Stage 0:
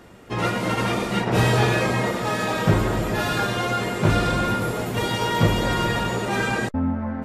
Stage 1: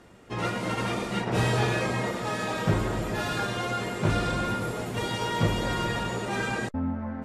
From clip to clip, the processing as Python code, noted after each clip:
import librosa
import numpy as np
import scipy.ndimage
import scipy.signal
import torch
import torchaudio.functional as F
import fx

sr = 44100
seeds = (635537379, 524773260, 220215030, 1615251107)

y = scipy.signal.sosfilt(scipy.signal.cheby1(2, 1.0, 10000.0, 'lowpass', fs=sr, output='sos'), x)
y = y * librosa.db_to_amplitude(-5.0)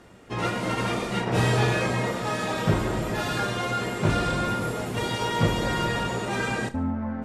y = fx.doubler(x, sr, ms=32.0, db=-13.0)
y = fx.echo_feedback(y, sr, ms=72, feedback_pct=43, wet_db=-19)
y = y * librosa.db_to_amplitude(2.0)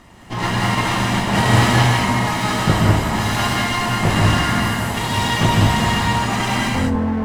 y = fx.lower_of_two(x, sr, delay_ms=1.0)
y = fx.rev_gated(y, sr, seeds[0], gate_ms=230, shape='rising', drr_db=-2.0)
y = y * librosa.db_to_amplitude(6.0)